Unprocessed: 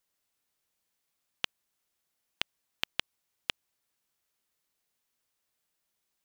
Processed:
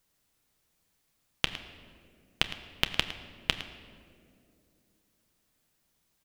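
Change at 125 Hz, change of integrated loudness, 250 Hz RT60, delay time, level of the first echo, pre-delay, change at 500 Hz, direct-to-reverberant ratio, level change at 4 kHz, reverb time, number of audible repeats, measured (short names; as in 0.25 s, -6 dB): +15.5 dB, +5.5 dB, 3.6 s, 0.109 s, -14.5 dB, 6 ms, +8.5 dB, 8.0 dB, +6.0 dB, 2.6 s, 1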